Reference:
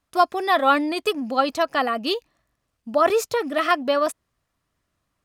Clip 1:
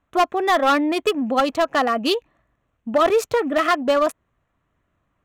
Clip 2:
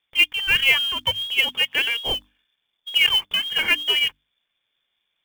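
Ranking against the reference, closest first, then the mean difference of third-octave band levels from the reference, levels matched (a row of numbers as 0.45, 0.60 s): 1, 2; 3.0, 13.0 dB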